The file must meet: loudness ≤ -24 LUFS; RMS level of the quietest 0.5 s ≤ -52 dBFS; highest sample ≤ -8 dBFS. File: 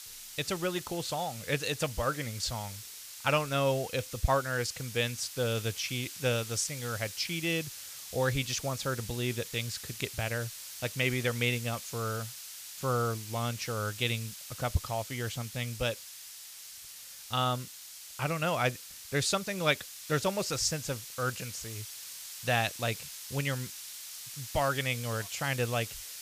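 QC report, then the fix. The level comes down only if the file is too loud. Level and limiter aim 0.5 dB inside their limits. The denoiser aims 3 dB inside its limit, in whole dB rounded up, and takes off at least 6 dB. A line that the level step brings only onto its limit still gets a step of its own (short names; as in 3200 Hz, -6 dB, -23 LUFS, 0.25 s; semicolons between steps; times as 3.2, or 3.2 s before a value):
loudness -32.5 LUFS: OK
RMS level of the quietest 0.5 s -48 dBFS: fail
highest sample -11.5 dBFS: OK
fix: denoiser 7 dB, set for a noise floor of -48 dBFS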